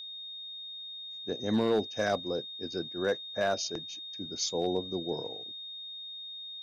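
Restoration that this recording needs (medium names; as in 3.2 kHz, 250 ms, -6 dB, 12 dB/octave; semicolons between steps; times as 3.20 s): clip repair -20 dBFS; band-stop 3.7 kHz, Q 30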